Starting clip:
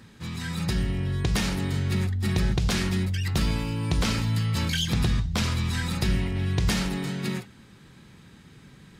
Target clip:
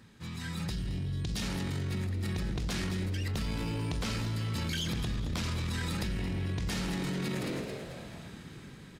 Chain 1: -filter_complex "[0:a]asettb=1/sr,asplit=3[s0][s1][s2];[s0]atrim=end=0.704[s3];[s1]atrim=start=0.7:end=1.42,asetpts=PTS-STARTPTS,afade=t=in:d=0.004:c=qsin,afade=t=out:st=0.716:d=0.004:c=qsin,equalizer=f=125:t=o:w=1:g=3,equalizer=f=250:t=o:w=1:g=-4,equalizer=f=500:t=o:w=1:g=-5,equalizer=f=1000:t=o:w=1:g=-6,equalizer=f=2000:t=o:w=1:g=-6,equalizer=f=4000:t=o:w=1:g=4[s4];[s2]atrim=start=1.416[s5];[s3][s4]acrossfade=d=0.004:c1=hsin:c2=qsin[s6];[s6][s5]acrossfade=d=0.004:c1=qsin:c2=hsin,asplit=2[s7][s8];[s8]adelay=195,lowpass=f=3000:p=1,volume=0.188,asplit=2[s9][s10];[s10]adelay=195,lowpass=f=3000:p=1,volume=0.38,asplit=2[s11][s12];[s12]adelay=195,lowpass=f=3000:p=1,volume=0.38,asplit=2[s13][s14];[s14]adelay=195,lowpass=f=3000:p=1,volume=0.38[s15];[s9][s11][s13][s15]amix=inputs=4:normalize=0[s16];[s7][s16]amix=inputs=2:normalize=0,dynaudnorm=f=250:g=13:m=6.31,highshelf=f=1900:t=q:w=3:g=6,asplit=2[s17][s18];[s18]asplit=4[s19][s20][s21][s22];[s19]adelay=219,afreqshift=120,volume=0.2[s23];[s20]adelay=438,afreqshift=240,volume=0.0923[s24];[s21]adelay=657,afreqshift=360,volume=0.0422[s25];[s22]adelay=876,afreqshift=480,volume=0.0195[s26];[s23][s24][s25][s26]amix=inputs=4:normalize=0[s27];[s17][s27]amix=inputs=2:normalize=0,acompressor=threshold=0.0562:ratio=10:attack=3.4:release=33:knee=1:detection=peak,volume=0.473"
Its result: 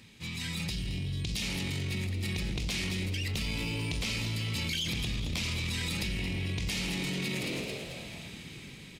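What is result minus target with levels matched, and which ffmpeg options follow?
4 kHz band +4.5 dB
-filter_complex "[0:a]asettb=1/sr,asplit=3[s0][s1][s2];[s0]atrim=end=0.704[s3];[s1]atrim=start=0.7:end=1.42,asetpts=PTS-STARTPTS,afade=t=in:d=0.004:c=qsin,afade=t=out:st=0.716:d=0.004:c=qsin,equalizer=f=125:t=o:w=1:g=3,equalizer=f=250:t=o:w=1:g=-4,equalizer=f=500:t=o:w=1:g=-5,equalizer=f=1000:t=o:w=1:g=-6,equalizer=f=2000:t=o:w=1:g=-6,equalizer=f=4000:t=o:w=1:g=4[s4];[s2]atrim=start=1.416[s5];[s3][s4]acrossfade=d=0.004:c1=hsin:c2=qsin[s6];[s6][s5]acrossfade=d=0.004:c1=qsin:c2=hsin,asplit=2[s7][s8];[s8]adelay=195,lowpass=f=3000:p=1,volume=0.188,asplit=2[s9][s10];[s10]adelay=195,lowpass=f=3000:p=1,volume=0.38,asplit=2[s11][s12];[s12]adelay=195,lowpass=f=3000:p=1,volume=0.38,asplit=2[s13][s14];[s14]adelay=195,lowpass=f=3000:p=1,volume=0.38[s15];[s9][s11][s13][s15]amix=inputs=4:normalize=0[s16];[s7][s16]amix=inputs=2:normalize=0,dynaudnorm=f=250:g=13:m=6.31,asplit=2[s17][s18];[s18]asplit=4[s19][s20][s21][s22];[s19]adelay=219,afreqshift=120,volume=0.2[s23];[s20]adelay=438,afreqshift=240,volume=0.0923[s24];[s21]adelay=657,afreqshift=360,volume=0.0422[s25];[s22]adelay=876,afreqshift=480,volume=0.0195[s26];[s23][s24][s25][s26]amix=inputs=4:normalize=0[s27];[s17][s27]amix=inputs=2:normalize=0,acompressor=threshold=0.0562:ratio=10:attack=3.4:release=33:knee=1:detection=peak,volume=0.473"

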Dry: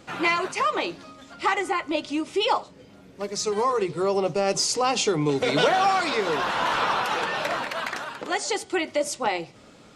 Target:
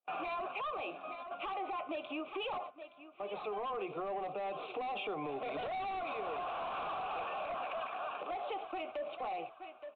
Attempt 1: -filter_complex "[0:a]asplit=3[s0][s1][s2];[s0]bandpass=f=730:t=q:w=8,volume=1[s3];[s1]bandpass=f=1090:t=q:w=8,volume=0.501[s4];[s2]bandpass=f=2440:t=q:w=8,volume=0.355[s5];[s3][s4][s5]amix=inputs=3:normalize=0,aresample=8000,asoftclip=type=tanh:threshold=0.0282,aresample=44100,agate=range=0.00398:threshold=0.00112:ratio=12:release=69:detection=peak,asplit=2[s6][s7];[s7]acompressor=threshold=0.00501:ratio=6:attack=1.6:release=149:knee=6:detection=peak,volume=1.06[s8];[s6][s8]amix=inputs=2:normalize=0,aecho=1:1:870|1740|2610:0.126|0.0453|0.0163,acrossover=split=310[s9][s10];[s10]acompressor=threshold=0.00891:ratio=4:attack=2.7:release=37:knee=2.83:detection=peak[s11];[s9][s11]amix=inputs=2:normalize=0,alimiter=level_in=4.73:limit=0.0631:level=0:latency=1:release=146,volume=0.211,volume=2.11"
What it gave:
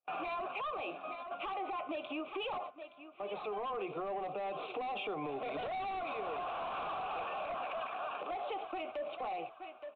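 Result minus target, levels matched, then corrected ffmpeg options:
compression: peak gain reduction -6.5 dB
-filter_complex "[0:a]asplit=3[s0][s1][s2];[s0]bandpass=f=730:t=q:w=8,volume=1[s3];[s1]bandpass=f=1090:t=q:w=8,volume=0.501[s4];[s2]bandpass=f=2440:t=q:w=8,volume=0.355[s5];[s3][s4][s5]amix=inputs=3:normalize=0,aresample=8000,asoftclip=type=tanh:threshold=0.0282,aresample=44100,agate=range=0.00398:threshold=0.00112:ratio=12:release=69:detection=peak,asplit=2[s6][s7];[s7]acompressor=threshold=0.002:ratio=6:attack=1.6:release=149:knee=6:detection=peak,volume=1.06[s8];[s6][s8]amix=inputs=2:normalize=0,aecho=1:1:870|1740|2610:0.126|0.0453|0.0163,acrossover=split=310[s9][s10];[s10]acompressor=threshold=0.00891:ratio=4:attack=2.7:release=37:knee=2.83:detection=peak[s11];[s9][s11]amix=inputs=2:normalize=0,alimiter=level_in=4.73:limit=0.0631:level=0:latency=1:release=146,volume=0.211,volume=2.11"

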